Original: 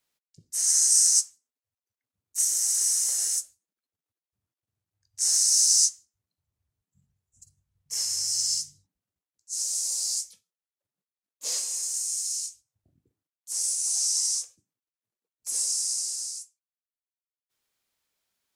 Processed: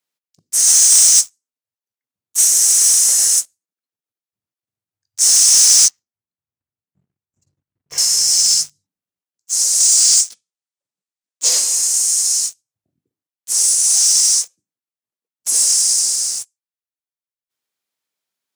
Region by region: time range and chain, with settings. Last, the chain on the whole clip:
5.88–7.98 s: low-pass 2.4 kHz + waveshaping leveller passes 2
9.80–11.49 s: steep low-pass 9.1 kHz + treble shelf 4.6 kHz +8.5 dB
whole clip: high-pass 150 Hz 12 dB/octave; waveshaping leveller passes 3; trim +3 dB

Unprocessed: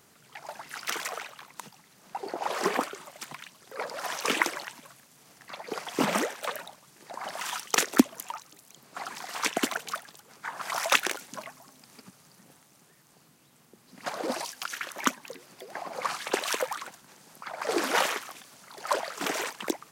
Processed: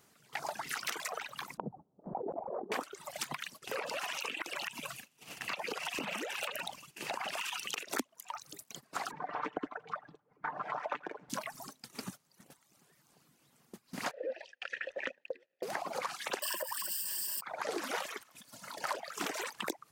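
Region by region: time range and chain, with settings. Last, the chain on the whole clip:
1.57–2.72 s: inverse Chebyshev low-pass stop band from 2.5 kHz, stop band 60 dB + compressor with a negative ratio -43 dBFS
3.61–7.91 s: peaking EQ 2.7 kHz +13.5 dB 0.41 oct + compression 5:1, threshold -35 dBFS
9.11–11.30 s: low-pass 1.1 kHz + comb 6.7 ms, depth 47% + delay 84 ms -14.5 dB
14.11–15.63 s: vowel filter e + waveshaping leveller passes 1 + distance through air 88 m
16.42–17.41 s: zero-crossing glitches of -22.5 dBFS + rippled EQ curve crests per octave 1.3, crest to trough 16 dB
18.23–18.84 s: hum notches 50/100/150 Hz + compression 12:1, threshold -47 dBFS + comb of notches 390 Hz
whole clip: gate -53 dBFS, range -15 dB; reverb removal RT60 0.65 s; compression 10:1, threshold -44 dBFS; trim +9.5 dB

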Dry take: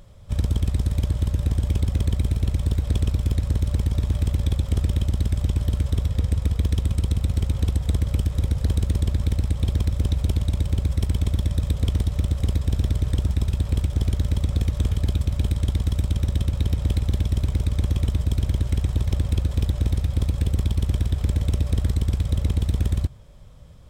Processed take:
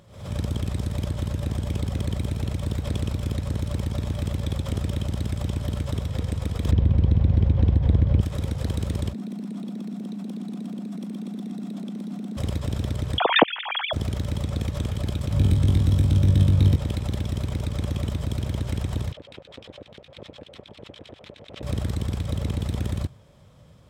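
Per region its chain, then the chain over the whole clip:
6.71–8.21 s: low-pass 3.9 kHz + tilt EQ -2.5 dB/octave + band-stop 1.3 kHz, Q 11
9.13–12.37 s: level held to a coarse grid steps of 16 dB + frequency shift +140 Hz
13.18–13.93 s: formants replaced by sine waves + high-pass 350 Hz 6 dB/octave + three bands compressed up and down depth 70%
15.34–16.76 s: bass shelf 280 Hz +9.5 dB + flutter echo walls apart 3.6 m, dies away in 0.25 s + three bands expanded up and down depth 40%
19.12–21.63 s: resonant high shelf 3.4 kHz -6.5 dB, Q 1.5 + LFO band-pass square 9.9 Hz 540–3900 Hz
whole clip: high-pass 110 Hz 12 dB/octave; treble shelf 6.2 kHz -4.5 dB; swell ahead of each attack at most 100 dB/s

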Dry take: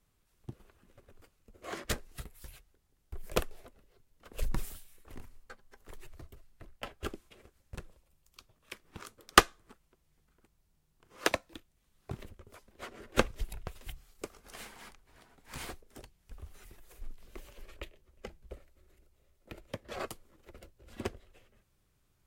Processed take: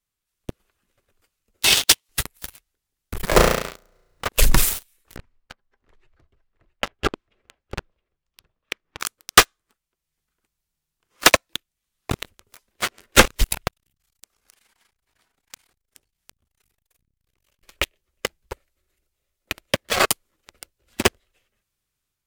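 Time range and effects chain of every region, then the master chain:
1.62–2.09 s: high-pass 1.2 kHz + ring modulator 1.5 kHz + three bands compressed up and down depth 100%
3.22–4.29 s: median filter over 15 samples + flutter echo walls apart 5.9 m, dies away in 0.84 s + three bands compressed up and down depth 70%
5.16–9.00 s: tape spacing loss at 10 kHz 30 dB + delay 667 ms -12.5 dB
13.68–17.63 s: compression 5:1, threshold -54 dBFS + transformer saturation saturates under 600 Hz
whole clip: tilt shelf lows -6 dB, about 1.2 kHz; level rider gain up to 4 dB; waveshaping leveller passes 5

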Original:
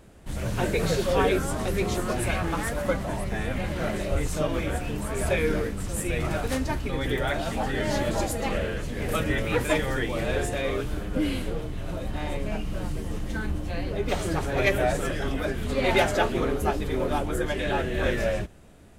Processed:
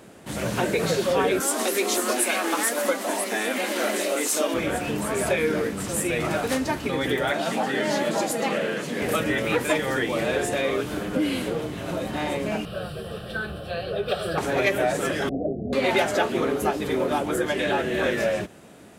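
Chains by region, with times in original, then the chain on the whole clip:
1.40–4.54 s: brick-wall FIR high-pass 210 Hz + treble shelf 4 kHz +11 dB
7.32–9.02 s: Chebyshev high-pass 160 Hz, order 3 + treble shelf 12 kHz -3.5 dB
12.65–14.38 s: peaking EQ 14 kHz -7 dB 0.73 oct + static phaser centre 1.4 kHz, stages 8
15.29–15.73 s: Chebyshev low-pass 760 Hz, order 10 + peaking EQ 500 Hz -2.5 dB 1.4 oct
whole clip: high-pass 180 Hz 12 dB/octave; compression 2:1, threshold -31 dBFS; trim +7.5 dB

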